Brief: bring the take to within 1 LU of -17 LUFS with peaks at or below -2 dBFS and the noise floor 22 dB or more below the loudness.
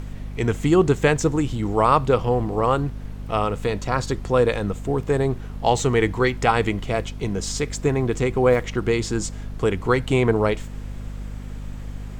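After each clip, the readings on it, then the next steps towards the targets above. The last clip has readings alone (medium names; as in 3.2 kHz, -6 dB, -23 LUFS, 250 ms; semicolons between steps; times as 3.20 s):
hum 50 Hz; highest harmonic 250 Hz; hum level -31 dBFS; noise floor -34 dBFS; noise floor target -44 dBFS; loudness -22.0 LUFS; peak level -4.0 dBFS; loudness target -17.0 LUFS
-> de-hum 50 Hz, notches 5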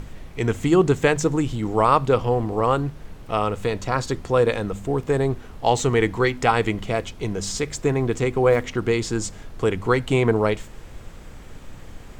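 hum not found; noise floor -41 dBFS; noise floor target -44 dBFS
-> noise print and reduce 6 dB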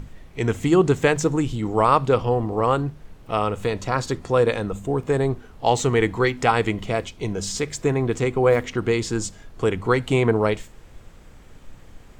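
noise floor -46 dBFS; loudness -22.0 LUFS; peak level -4.0 dBFS; loudness target -17.0 LUFS
-> trim +5 dB; peak limiter -2 dBFS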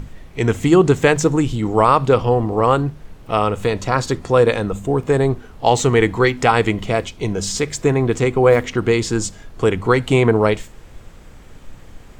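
loudness -17.5 LUFS; peak level -2.0 dBFS; noise floor -41 dBFS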